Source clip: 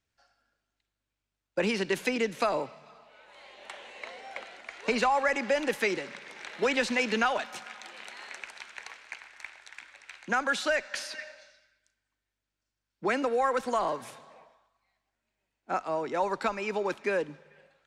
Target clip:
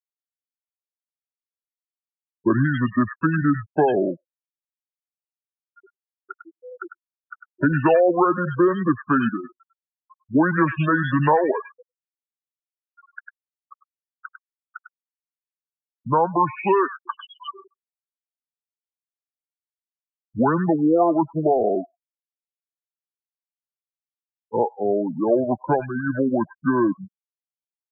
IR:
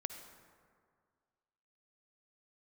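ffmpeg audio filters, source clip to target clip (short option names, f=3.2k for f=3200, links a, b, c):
-filter_complex "[0:a]afftfilt=real='re*gte(hypot(re,im),0.0501)':imag='im*gte(hypot(re,im),0.0501)':win_size=1024:overlap=0.75,asetrate=28224,aresample=44100,acrossover=split=1800[a][b];[b]adelay=100[c];[a][c]amix=inputs=2:normalize=0,volume=9dB"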